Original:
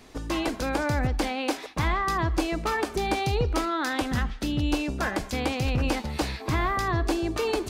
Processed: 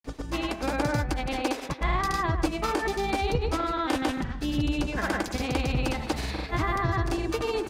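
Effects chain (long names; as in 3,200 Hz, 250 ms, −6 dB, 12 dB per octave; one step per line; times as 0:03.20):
bucket-brigade delay 126 ms, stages 2,048, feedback 36%, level −10 dB
granular cloud 100 ms, pitch spread up and down by 0 semitones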